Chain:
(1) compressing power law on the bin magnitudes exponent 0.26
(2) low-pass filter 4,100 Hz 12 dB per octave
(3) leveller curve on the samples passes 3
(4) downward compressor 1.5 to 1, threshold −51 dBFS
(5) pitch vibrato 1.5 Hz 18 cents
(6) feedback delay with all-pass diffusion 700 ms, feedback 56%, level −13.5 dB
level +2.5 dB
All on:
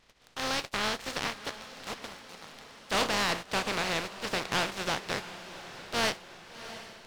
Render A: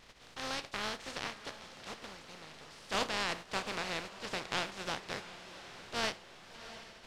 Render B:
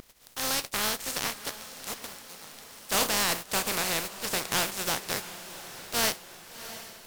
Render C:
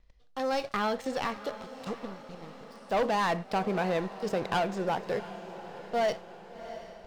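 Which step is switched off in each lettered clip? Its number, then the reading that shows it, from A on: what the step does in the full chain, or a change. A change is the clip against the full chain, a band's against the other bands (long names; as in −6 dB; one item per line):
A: 3, change in crest factor +7.0 dB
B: 2, 8 kHz band +10.0 dB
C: 1, 8 kHz band −14.5 dB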